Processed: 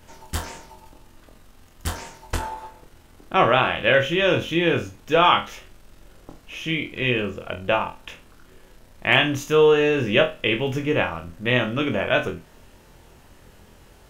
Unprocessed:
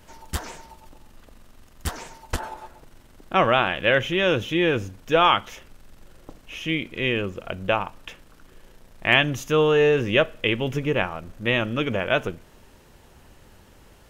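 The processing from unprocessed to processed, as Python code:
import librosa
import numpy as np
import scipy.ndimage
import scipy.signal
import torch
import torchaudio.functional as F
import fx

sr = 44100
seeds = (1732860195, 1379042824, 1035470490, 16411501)

y = fx.room_flutter(x, sr, wall_m=4.1, rt60_s=0.26)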